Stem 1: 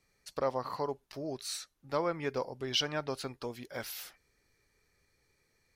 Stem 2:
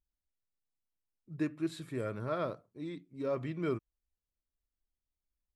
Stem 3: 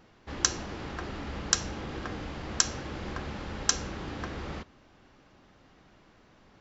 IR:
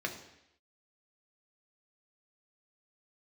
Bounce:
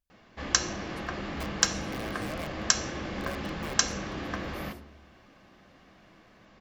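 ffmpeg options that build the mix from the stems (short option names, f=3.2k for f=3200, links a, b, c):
-filter_complex "[0:a]highshelf=f=9.4k:g=10.5,acompressor=threshold=-42dB:ratio=6,adelay=700,volume=-10dB[a];[1:a]acompressor=threshold=-44dB:ratio=3,aeval=exprs='(mod(66.8*val(0)+1,2)-1)/66.8':c=same,volume=0.5dB,asplit=2[b][c];[c]volume=-8.5dB[d];[2:a]adelay=100,volume=-0.5dB,asplit=2[e][f];[f]volume=-6dB[g];[3:a]atrim=start_sample=2205[h];[d][g]amix=inputs=2:normalize=0[i];[i][h]afir=irnorm=-1:irlink=0[j];[a][b][e][j]amix=inputs=4:normalize=0"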